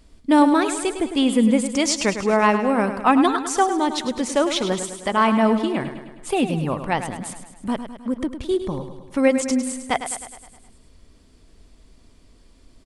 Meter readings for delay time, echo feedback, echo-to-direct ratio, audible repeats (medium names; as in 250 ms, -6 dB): 104 ms, 57%, -8.5 dB, 6